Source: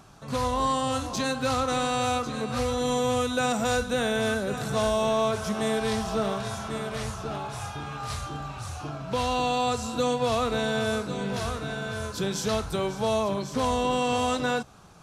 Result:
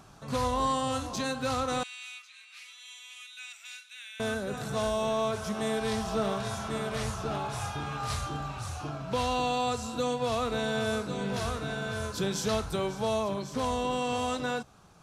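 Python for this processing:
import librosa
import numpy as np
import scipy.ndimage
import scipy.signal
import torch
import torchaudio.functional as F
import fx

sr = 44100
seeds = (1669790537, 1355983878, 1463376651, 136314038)

y = fx.rider(x, sr, range_db=4, speed_s=2.0)
y = fx.ladder_highpass(y, sr, hz=2100.0, resonance_pct=60, at=(1.83, 4.2))
y = y * 10.0 ** (-3.5 / 20.0)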